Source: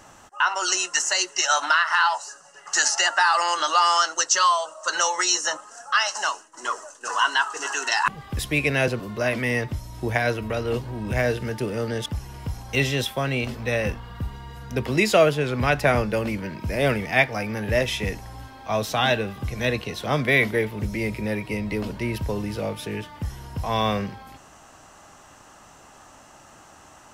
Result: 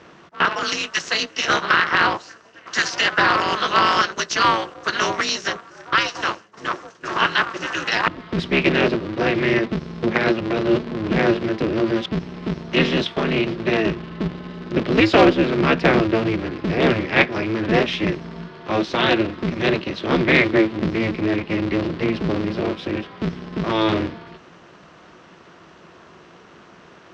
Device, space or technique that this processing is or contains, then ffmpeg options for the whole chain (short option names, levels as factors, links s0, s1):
ring modulator pedal into a guitar cabinet: -af "aeval=exprs='val(0)*sgn(sin(2*PI*110*n/s))':c=same,highpass=75,equalizer=f=170:t=q:w=4:g=7,equalizer=f=350:t=q:w=4:g=9,equalizer=f=820:t=q:w=4:g=-6,lowpass=f=4500:w=0.5412,lowpass=f=4500:w=1.3066,volume=1.41"